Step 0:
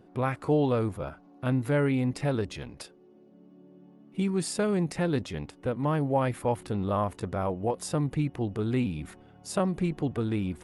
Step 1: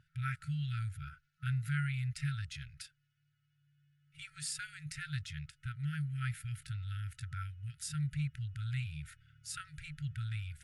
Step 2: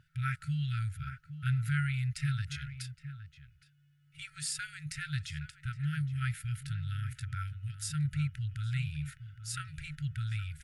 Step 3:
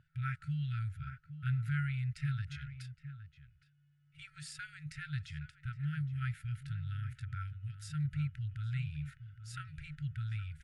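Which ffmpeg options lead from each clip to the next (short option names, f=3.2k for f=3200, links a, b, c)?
-af "afftfilt=real='re*(1-between(b*sr/4096,160,1300))':imag='im*(1-between(b*sr/4096,160,1300))':win_size=4096:overlap=0.75,volume=-4.5dB"
-filter_complex "[0:a]asplit=2[a][b];[b]adelay=816.3,volume=-11dB,highshelf=f=4k:g=-18.4[c];[a][c]amix=inputs=2:normalize=0,volume=3.5dB"
-af "lowpass=f=2.2k:p=1,volume=-3dB"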